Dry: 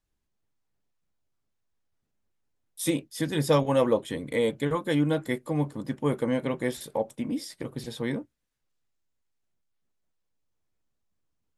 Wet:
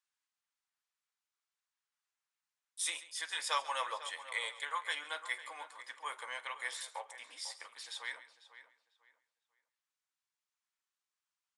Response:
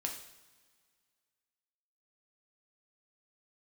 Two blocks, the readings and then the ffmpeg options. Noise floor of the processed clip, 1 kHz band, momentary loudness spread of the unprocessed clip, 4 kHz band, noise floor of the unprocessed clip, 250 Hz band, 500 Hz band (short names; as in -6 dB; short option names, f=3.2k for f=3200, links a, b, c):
under -85 dBFS, -4.5 dB, 9 LU, -1.5 dB, -79 dBFS, under -40 dB, -24.0 dB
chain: -filter_complex "[0:a]asplit=2[a][b];[b]aecho=0:1:48|137:0.1|0.15[c];[a][c]amix=inputs=2:normalize=0,aresample=22050,aresample=44100,highpass=f=1k:w=0.5412,highpass=f=1k:w=1.3066,asplit=2[d][e];[e]adelay=497,lowpass=f=2.8k:p=1,volume=-13dB,asplit=2[f][g];[g]adelay=497,lowpass=f=2.8k:p=1,volume=0.28,asplit=2[h][i];[i]adelay=497,lowpass=f=2.8k:p=1,volume=0.28[j];[f][h][j]amix=inputs=3:normalize=0[k];[d][k]amix=inputs=2:normalize=0,volume=-1.5dB"